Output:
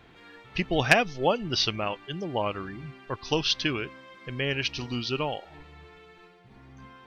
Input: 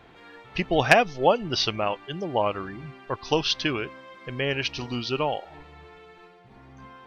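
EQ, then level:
parametric band 720 Hz −5.5 dB 1.8 octaves
0.0 dB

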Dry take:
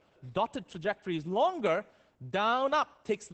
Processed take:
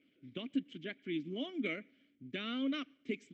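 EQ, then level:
formant filter i
+8.0 dB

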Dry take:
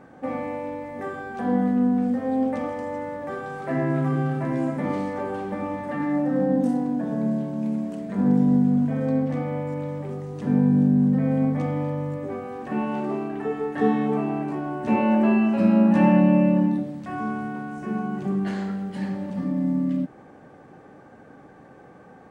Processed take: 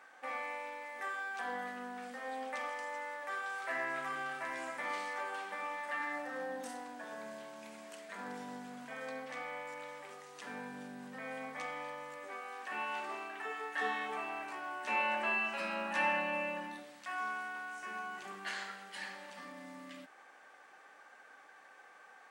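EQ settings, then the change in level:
high-pass filter 1,500 Hz 12 dB per octave
+2.0 dB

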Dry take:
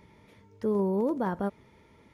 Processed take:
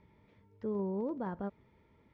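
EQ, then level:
high-frequency loss of the air 190 metres
low-shelf EQ 140 Hz +4 dB
−8.5 dB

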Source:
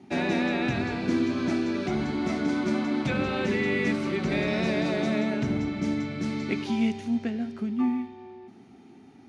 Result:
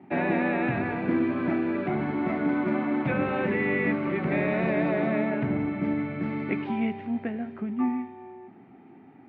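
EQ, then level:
loudspeaker in its box 130–2,200 Hz, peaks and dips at 230 Hz −6 dB, 400 Hz −4 dB, 1,400 Hz −3 dB
+3.5 dB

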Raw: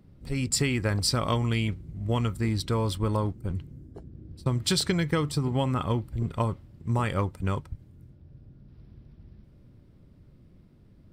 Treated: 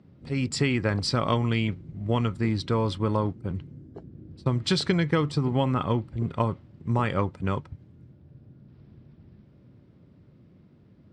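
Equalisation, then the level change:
high-pass filter 110 Hz 12 dB per octave
high-frequency loss of the air 120 metres
+3.0 dB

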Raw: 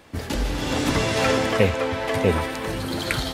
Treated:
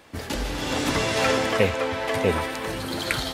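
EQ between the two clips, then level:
low-shelf EQ 300 Hz −5.5 dB
0.0 dB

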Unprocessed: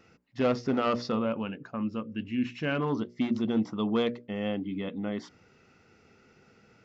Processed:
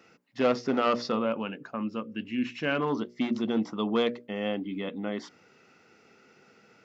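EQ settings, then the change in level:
high-pass filter 130 Hz 12 dB per octave
low-shelf EQ 170 Hz −9.5 dB
+3.0 dB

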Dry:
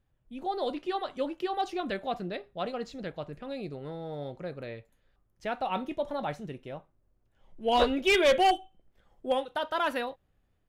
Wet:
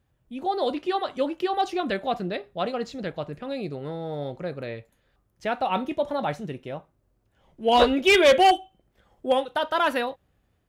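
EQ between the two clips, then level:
high-pass filter 48 Hz
+6.0 dB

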